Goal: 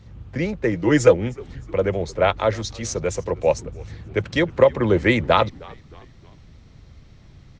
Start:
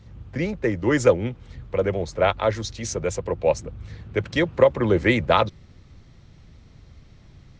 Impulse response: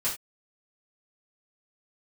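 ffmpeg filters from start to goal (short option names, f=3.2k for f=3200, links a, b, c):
-filter_complex "[0:a]asettb=1/sr,asplit=3[a][b][c];[a]atrim=end=0.724[d];[b]atrim=start=0.72:end=1.14,asetpts=PTS-STARTPTS,afade=t=in:d=0.004:c=qsin,afade=t=out:st=0.416:d=0.004:c=qsin,aecho=1:1:6.3:0.58,atrim=end_sample=18522[e];[c]atrim=start=1.136[f];[d][e]acrossfade=d=0.004:c1=hsin:c2=qsin[g];[g][f]acrossfade=d=0.004:c1=qsin:c2=hsin,asplit=4[h][i][j][k];[i]adelay=309,afreqshift=-85,volume=-23.5dB[l];[j]adelay=618,afreqshift=-170,volume=-30.4dB[m];[k]adelay=927,afreqshift=-255,volume=-37.4dB[n];[h][l][m][n]amix=inputs=4:normalize=0,volume=1.5dB"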